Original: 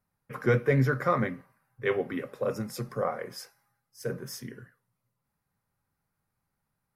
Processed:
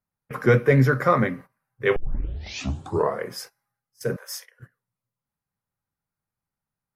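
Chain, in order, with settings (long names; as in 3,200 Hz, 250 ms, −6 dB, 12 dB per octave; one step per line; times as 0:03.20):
0:04.16–0:04.60: Butterworth high-pass 520 Hz 72 dB per octave
noise gate −47 dBFS, range −14 dB
0:01.96: tape start 1.28 s
level +6.5 dB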